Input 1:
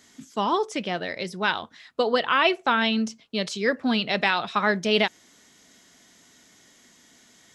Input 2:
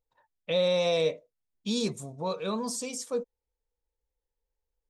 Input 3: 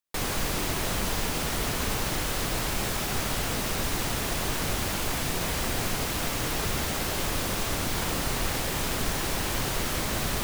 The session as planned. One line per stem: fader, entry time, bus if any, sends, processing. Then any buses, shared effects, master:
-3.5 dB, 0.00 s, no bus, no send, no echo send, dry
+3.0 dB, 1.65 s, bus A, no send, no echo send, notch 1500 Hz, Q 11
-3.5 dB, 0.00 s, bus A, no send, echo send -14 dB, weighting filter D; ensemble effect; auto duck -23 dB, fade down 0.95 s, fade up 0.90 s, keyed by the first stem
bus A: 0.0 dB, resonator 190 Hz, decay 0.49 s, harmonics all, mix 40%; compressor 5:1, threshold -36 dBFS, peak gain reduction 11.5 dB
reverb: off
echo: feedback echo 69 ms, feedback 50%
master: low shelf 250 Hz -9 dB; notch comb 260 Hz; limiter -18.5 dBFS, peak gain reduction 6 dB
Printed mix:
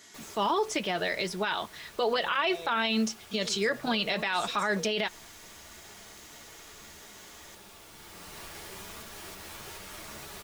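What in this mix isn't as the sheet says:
stem 1 -3.5 dB -> +4.5 dB; stem 3: missing weighting filter D

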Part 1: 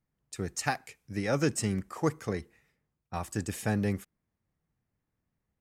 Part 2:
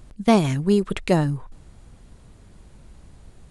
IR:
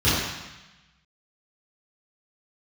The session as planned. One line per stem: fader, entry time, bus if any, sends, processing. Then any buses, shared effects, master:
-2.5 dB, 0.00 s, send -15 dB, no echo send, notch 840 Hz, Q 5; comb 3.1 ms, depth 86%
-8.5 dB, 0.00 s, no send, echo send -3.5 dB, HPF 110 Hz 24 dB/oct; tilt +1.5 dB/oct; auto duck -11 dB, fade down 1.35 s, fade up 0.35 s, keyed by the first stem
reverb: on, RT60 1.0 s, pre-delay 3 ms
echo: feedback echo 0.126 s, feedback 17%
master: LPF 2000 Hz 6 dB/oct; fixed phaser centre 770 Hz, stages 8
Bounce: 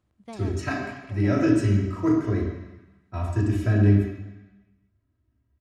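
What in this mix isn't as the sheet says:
stem 2 -8.5 dB -> -19.5 dB; master: missing fixed phaser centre 770 Hz, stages 8

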